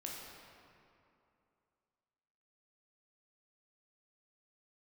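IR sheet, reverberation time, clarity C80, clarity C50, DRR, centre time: 2.7 s, 1.5 dB, 0.0 dB, -3.0 dB, 121 ms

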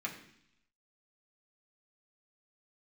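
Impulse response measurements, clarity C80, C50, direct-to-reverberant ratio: 11.0 dB, 9.0 dB, -3.0 dB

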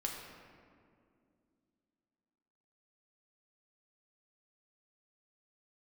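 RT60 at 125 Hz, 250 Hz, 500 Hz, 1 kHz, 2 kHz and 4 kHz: 2.8 s, 3.5 s, 2.6 s, 2.0 s, 1.7 s, 1.1 s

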